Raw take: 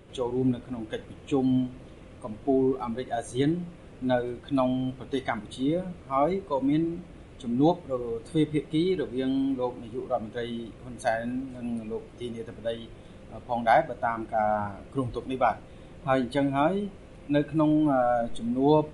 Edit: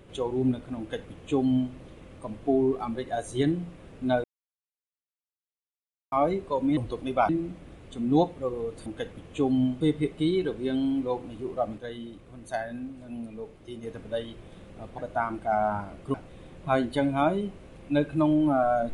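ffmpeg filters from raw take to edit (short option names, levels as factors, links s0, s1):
-filter_complex "[0:a]asplit=11[s0][s1][s2][s3][s4][s5][s6][s7][s8][s9][s10];[s0]atrim=end=4.24,asetpts=PTS-STARTPTS,afade=t=out:st=4.236:d=0.004:c=hsin[s11];[s1]atrim=start=4.24:end=6.12,asetpts=PTS-STARTPTS,volume=0[s12];[s2]atrim=start=6.12:end=6.772,asetpts=PTS-STARTPTS,afade=t=in:d=0.004:c=hsin[s13];[s3]atrim=start=15.008:end=15.532[s14];[s4]atrim=start=6.768:end=8.342[s15];[s5]atrim=start=0.788:end=1.742[s16];[s6]atrim=start=8.338:end=10.312[s17];[s7]atrim=start=10.308:end=12.362,asetpts=PTS-STARTPTS,volume=0.562[s18];[s8]atrim=start=12.358:end=13.512[s19];[s9]atrim=start=13.848:end=15.012[s20];[s10]atrim=start=15.528[s21];[s11][s12][s13]concat=n=3:v=0:a=1[s22];[s22][s14]acrossfade=d=0.004:c1=hsin:c2=hsin[s23];[s23][s15]acrossfade=d=0.004:c1=hsin:c2=hsin[s24];[s24][s16]acrossfade=d=0.004:c1=hsin:c2=hsin[s25];[s25][s17]acrossfade=d=0.004:c1=hsin:c2=hsin[s26];[s26][s18]acrossfade=d=0.004:c1=hsin:c2=hsin[s27];[s27][s19]acrossfade=d=0.004:c1=hsin:c2=hsin[s28];[s28][s20]acrossfade=d=0.004:c1=hsin:c2=hsin[s29];[s29][s21]acrossfade=d=0.004:c1=hsin:c2=hsin"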